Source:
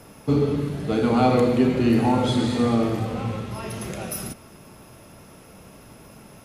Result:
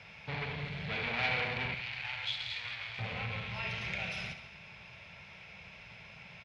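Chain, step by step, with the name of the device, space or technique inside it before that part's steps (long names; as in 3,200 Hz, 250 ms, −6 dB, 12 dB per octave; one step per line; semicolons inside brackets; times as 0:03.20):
scooped metal amplifier (tube saturation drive 26 dB, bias 0.4; loudspeaker in its box 79–3,900 Hz, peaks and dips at 170 Hz +6 dB, 1,200 Hz −8 dB, 2,300 Hz +10 dB; guitar amp tone stack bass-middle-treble 10-0-10)
0:01.74–0:02.99: guitar amp tone stack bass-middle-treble 10-0-10
repeating echo 67 ms, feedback 59%, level −11.5 dB
level +6 dB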